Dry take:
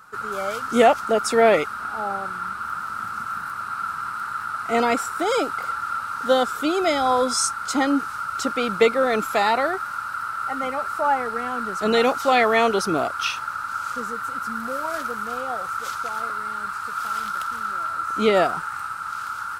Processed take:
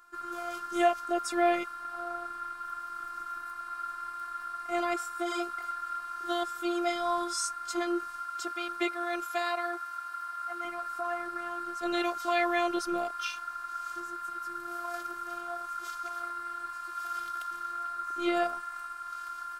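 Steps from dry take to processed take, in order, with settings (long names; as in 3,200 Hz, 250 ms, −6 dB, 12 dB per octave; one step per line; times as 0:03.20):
phases set to zero 347 Hz
0:08.23–0:10.65: low-shelf EQ 200 Hz −12 dB
level −8 dB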